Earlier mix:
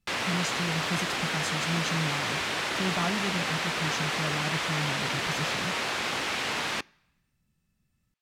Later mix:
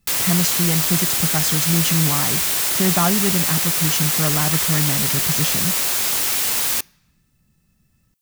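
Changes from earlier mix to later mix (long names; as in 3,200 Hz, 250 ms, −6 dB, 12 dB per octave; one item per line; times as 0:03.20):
speech +11.5 dB
background: remove band-pass filter 100–2,800 Hz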